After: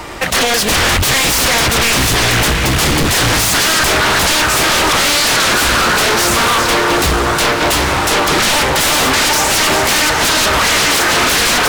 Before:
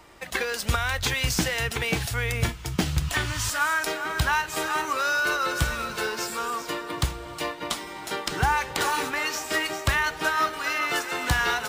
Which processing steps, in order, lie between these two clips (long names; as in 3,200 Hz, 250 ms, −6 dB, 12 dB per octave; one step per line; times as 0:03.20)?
feedback delay with all-pass diffusion 807 ms, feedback 56%, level −12.5 dB
sine wavefolder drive 20 dB, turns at −9 dBFS
highs frequency-modulated by the lows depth 0.75 ms